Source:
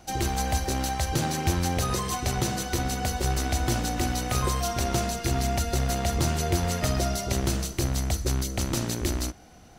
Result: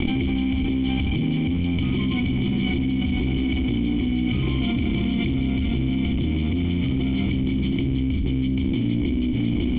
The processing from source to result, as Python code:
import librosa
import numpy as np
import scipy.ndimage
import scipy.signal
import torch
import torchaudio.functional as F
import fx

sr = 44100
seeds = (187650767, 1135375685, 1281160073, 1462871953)

y = fx.lower_of_two(x, sr, delay_ms=0.92)
y = fx.peak_eq(y, sr, hz=64.0, db=-5.0, octaves=0.27)
y = fx.leveller(y, sr, passes=5)
y = fx.formant_cascade(y, sr, vowel='i')
y = y + 10.0 ** (-15.0 / 20.0) * np.pad(y, (int(550 * sr / 1000.0), 0))[:len(y)]
y = fx.env_flatten(y, sr, amount_pct=100)
y = y * 10.0 ** (1.5 / 20.0)